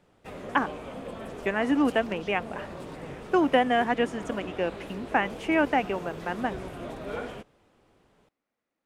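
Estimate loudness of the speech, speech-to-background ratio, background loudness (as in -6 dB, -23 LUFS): -27.5 LUFS, 12.0 dB, -39.5 LUFS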